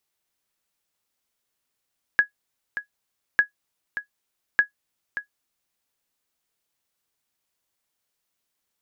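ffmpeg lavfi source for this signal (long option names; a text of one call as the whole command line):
ffmpeg -f lavfi -i "aevalsrc='0.422*(sin(2*PI*1670*mod(t,1.2))*exp(-6.91*mod(t,1.2)/0.11)+0.251*sin(2*PI*1670*max(mod(t,1.2)-0.58,0))*exp(-6.91*max(mod(t,1.2)-0.58,0)/0.11))':duration=3.6:sample_rate=44100" out.wav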